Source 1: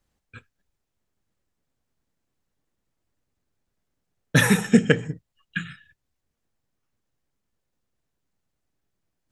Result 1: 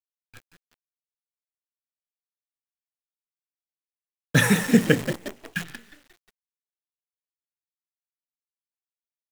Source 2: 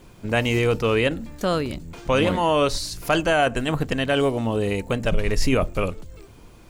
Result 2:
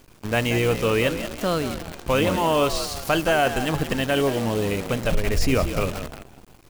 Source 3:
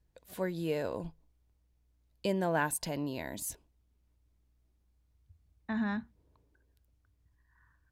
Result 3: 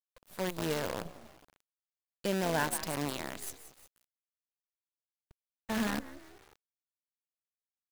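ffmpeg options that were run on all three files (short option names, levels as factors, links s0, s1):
-filter_complex "[0:a]asplit=5[s0][s1][s2][s3][s4];[s1]adelay=179,afreqshift=61,volume=0.282[s5];[s2]adelay=358,afreqshift=122,volume=0.122[s6];[s3]adelay=537,afreqshift=183,volume=0.0519[s7];[s4]adelay=716,afreqshift=244,volume=0.0224[s8];[s0][s5][s6][s7][s8]amix=inputs=5:normalize=0,acrusher=bits=6:dc=4:mix=0:aa=0.000001,volume=0.891"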